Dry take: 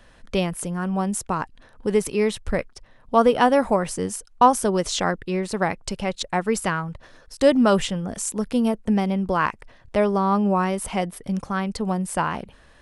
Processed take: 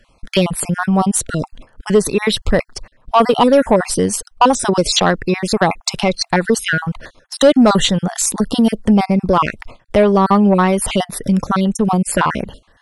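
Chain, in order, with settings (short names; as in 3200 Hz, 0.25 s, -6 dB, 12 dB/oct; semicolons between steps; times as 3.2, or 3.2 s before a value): random spectral dropouts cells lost 35%; gate -47 dBFS, range -14 dB; in parallel at +2 dB: compressor, threshold -29 dBFS, peak gain reduction 17.5 dB; on the sum: soft clip -10 dBFS, distortion -17 dB; dynamic EQ 3900 Hz, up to +7 dB, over -50 dBFS, Q 3.8; gain +7.5 dB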